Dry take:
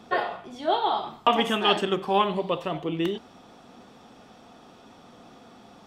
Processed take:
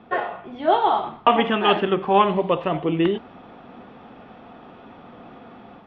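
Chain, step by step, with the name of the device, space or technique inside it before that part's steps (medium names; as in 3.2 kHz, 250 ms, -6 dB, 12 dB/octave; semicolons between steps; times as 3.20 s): action camera in a waterproof case (low-pass 2.8 kHz 24 dB/octave; level rider gain up to 6 dB; trim +1 dB; AAC 64 kbps 32 kHz)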